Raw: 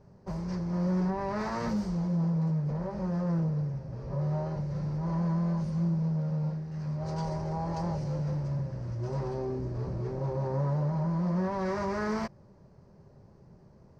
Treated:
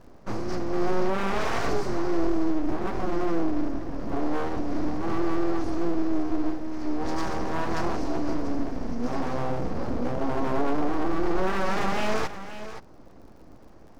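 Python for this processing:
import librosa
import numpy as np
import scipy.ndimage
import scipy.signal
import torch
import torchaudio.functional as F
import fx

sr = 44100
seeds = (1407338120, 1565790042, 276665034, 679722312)

y = x + 10.0 ** (-12.0 / 20.0) * np.pad(x, (int(524 * sr / 1000.0), 0))[:len(x)]
y = np.abs(y)
y = fx.dmg_crackle(y, sr, seeds[0], per_s=66.0, level_db=-57.0)
y = F.gain(torch.from_numpy(y), 8.0).numpy()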